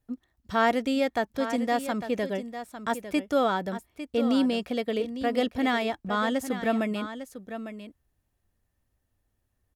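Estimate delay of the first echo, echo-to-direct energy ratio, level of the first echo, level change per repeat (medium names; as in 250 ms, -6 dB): 852 ms, -11.0 dB, -11.0 dB, no regular repeats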